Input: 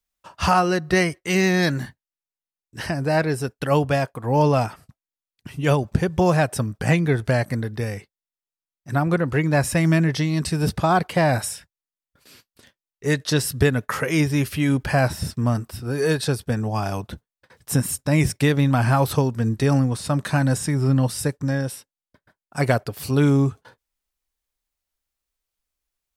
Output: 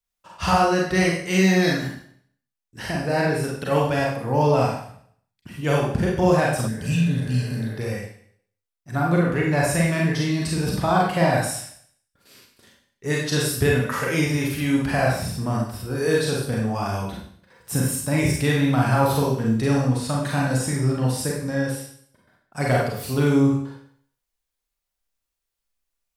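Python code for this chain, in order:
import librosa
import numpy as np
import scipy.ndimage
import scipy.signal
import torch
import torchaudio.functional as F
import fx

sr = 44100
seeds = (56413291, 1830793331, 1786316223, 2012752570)

y = fx.rev_schroeder(x, sr, rt60_s=0.6, comb_ms=32, drr_db=-3.0)
y = fx.spec_repair(y, sr, seeds[0], start_s=6.71, length_s=0.99, low_hz=300.0, high_hz=2400.0, source='after')
y = F.gain(torch.from_numpy(y), -4.5).numpy()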